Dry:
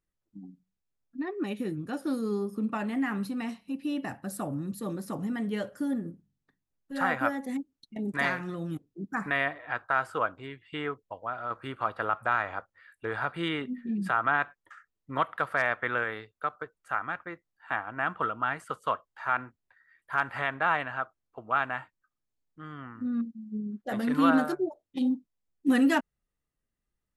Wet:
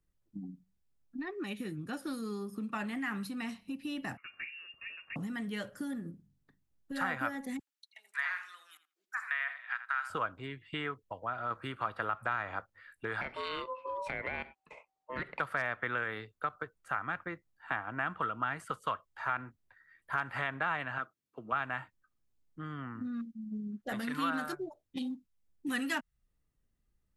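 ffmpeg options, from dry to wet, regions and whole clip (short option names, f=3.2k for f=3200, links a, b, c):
-filter_complex "[0:a]asettb=1/sr,asplit=3[a][b][c];[a]atrim=end=4.174[d];[b]atrim=start=4.17:end=5.16,asetpts=PTS-STARTPTS,afade=t=in:d=0.004:c=qsin,afade=t=out:st=0.986:d=0.004:c=qsin,highpass=f=1.4k:p=1,lowpass=f=2.6k:t=q:w=0.5098,lowpass=f=2.6k:t=q:w=0.6013,lowpass=f=2.6k:t=q:w=0.9,lowpass=f=2.6k:t=q:w=2.563,afreqshift=-3000[e];[c]atrim=start=5.156[f];[d][e]acrossfade=d=0.004:c1=hsin:c2=qsin[g];[g][f]acrossfade=d=0.004:c1=qsin:c2=hsin,asettb=1/sr,asplit=3[h][i][j];[h]atrim=end=7.594[k];[i]atrim=start=7.59:end=10.1,asetpts=PTS-STARTPTS,afade=t=in:d=0.004:c=qsin,afade=t=out:st=2.506:d=0.004:c=qsin,highpass=f=1.4k:w=0.5412,highpass=f=1.4k:w=1.3066,acrossover=split=2500[l][m];[m]acompressor=threshold=-47dB:ratio=4:attack=1:release=60[n];[l][n]amix=inputs=2:normalize=0,asplit=2[o][p];[p]adelay=81,lowpass=f=2.6k:p=1,volume=-11dB,asplit=2[q][r];[r]adelay=81,lowpass=f=2.6k:p=1,volume=0.17[s];[o][q][s]amix=inputs=3:normalize=0,atrim=end_sample=110691[t];[j]atrim=start=10.096[u];[k][t]acrossfade=d=0.004:c1=hsin:c2=qsin[v];[v][u]acrossfade=d=0.004:c1=qsin:c2=hsin,asettb=1/sr,asplit=3[w][x][y];[w]atrim=end=13.214[z];[x]atrim=start=13.21:end=15.4,asetpts=PTS-STARTPTS,afade=t=in:d=0.004:c=qsin,afade=t=out:st=2.186:d=0.004:c=qsin,lowpass=f=8.6k:w=0.5412,lowpass=f=8.6k:w=1.3066,acompressor=threshold=-28dB:ratio=6:attack=3.2:release=140:knee=1:detection=peak,aeval=exprs='val(0)*sin(2*PI*770*n/s)':c=same[aa];[y]atrim=start=15.396[ab];[z][aa]acrossfade=d=0.004:c1=hsin:c2=qsin[ac];[ac][ab]acrossfade=d=0.004:c1=qsin:c2=hsin,asettb=1/sr,asplit=3[ad][ae][af];[ad]atrim=end=20.984[ag];[ae]atrim=start=20.98:end=21.52,asetpts=PTS-STARTPTS,afade=t=in:d=0.004:c=qsin,afade=t=out:st=0.536:d=0.004:c=qsin,highpass=190,equalizer=f=770:w=1.3:g=-12[ah];[af]atrim=start=21.516[ai];[ag][ah]acrossfade=d=0.004:c1=hsin:c2=qsin[aj];[aj][ai]acrossfade=d=0.004:c1=qsin:c2=hsin,lowshelf=f=260:g=9,acrossover=split=120|1100[ak][al][am];[ak]acompressor=threshold=-58dB:ratio=4[an];[al]acompressor=threshold=-40dB:ratio=4[ao];[am]acompressor=threshold=-32dB:ratio=4[ap];[an][ao][ap]amix=inputs=3:normalize=0"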